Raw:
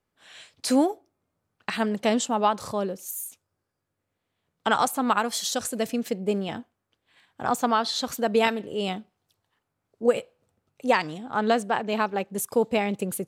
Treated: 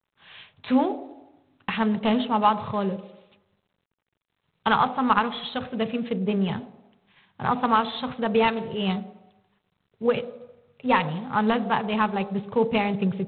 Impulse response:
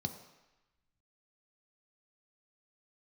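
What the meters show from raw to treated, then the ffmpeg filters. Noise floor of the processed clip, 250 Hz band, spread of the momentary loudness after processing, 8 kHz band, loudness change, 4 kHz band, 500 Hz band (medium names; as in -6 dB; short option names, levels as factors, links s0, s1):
-79 dBFS, +2.5 dB, 10 LU, under -40 dB, +1.0 dB, -1.0 dB, -1.0 dB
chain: -filter_complex "[0:a]asplit=2[s0][s1];[1:a]atrim=start_sample=2205,lowpass=2100[s2];[s1][s2]afir=irnorm=-1:irlink=0,volume=0.398[s3];[s0][s3]amix=inputs=2:normalize=0,volume=1.33" -ar 8000 -c:a adpcm_g726 -b:a 24k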